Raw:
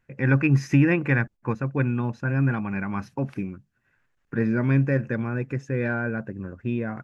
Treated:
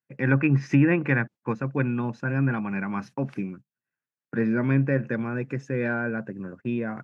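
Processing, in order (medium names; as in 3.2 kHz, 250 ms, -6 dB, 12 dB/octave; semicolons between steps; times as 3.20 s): gate -41 dBFS, range -21 dB; high-pass 130 Hz 24 dB/octave; low-pass that closes with the level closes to 2.6 kHz, closed at -16.5 dBFS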